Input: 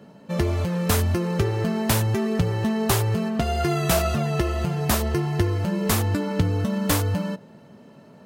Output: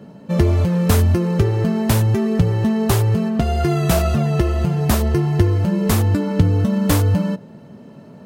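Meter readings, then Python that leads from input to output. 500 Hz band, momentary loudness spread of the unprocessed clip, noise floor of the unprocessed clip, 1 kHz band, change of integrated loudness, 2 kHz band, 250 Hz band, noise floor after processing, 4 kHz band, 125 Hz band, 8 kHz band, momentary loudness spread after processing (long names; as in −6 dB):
+4.0 dB, 3 LU, −49 dBFS, +2.0 dB, +5.5 dB, +0.5 dB, +6.5 dB, −41 dBFS, +0.5 dB, +7.5 dB, 0.0 dB, 3 LU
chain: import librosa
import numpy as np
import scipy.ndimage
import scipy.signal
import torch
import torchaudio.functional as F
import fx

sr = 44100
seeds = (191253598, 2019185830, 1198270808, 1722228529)

y = fx.rider(x, sr, range_db=3, speed_s=2.0)
y = fx.low_shelf(y, sr, hz=490.0, db=7.5)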